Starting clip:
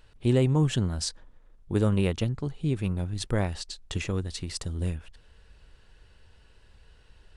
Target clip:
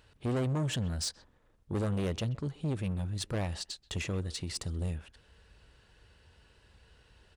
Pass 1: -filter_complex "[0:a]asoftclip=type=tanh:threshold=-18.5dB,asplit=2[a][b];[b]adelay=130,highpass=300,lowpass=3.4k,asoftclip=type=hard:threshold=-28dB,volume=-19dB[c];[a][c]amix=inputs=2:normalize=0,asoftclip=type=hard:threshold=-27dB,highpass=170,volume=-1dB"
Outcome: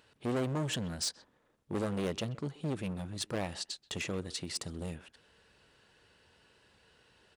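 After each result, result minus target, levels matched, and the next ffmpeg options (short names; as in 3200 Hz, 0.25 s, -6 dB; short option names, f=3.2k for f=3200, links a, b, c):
soft clip: distortion -7 dB; 125 Hz band -4.0 dB
-filter_complex "[0:a]asoftclip=type=tanh:threshold=-25.5dB,asplit=2[a][b];[b]adelay=130,highpass=300,lowpass=3.4k,asoftclip=type=hard:threshold=-28dB,volume=-19dB[c];[a][c]amix=inputs=2:normalize=0,asoftclip=type=hard:threshold=-27dB,highpass=170,volume=-1dB"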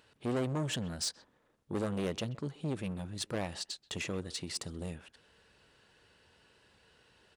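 125 Hz band -4.0 dB
-filter_complex "[0:a]asoftclip=type=tanh:threshold=-25.5dB,asplit=2[a][b];[b]adelay=130,highpass=300,lowpass=3.4k,asoftclip=type=hard:threshold=-28dB,volume=-19dB[c];[a][c]amix=inputs=2:normalize=0,asoftclip=type=hard:threshold=-27dB,highpass=55,volume=-1dB"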